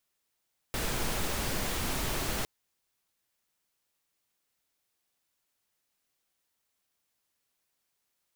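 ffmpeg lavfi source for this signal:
-f lavfi -i "anoisesrc=c=pink:a=0.136:d=1.71:r=44100:seed=1"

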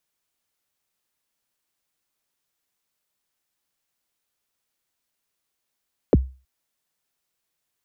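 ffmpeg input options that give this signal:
-f lavfi -i "aevalsrc='0.398*pow(10,-3*t/0.33)*sin(2*PI*(590*0.03/log(65/590)*(exp(log(65/590)*min(t,0.03)/0.03)-1)+65*max(t-0.03,0)))':d=0.32:s=44100"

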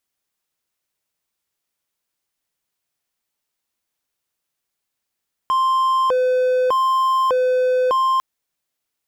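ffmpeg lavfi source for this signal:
-f lavfi -i "aevalsrc='0.237*(1-4*abs(mod((778.5*t+271.5/0.83*(0.5-abs(mod(0.83*t,1)-0.5)))+0.25,1)-0.5))':d=2.7:s=44100"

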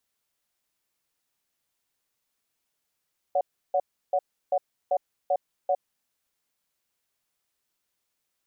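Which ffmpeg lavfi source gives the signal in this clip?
-f lavfi -i "aevalsrc='0.0708*(sin(2*PI*567*t)+sin(2*PI*733*t))*clip(min(mod(t,0.39),0.06-mod(t,0.39))/0.005,0,1)':d=2.54:s=44100"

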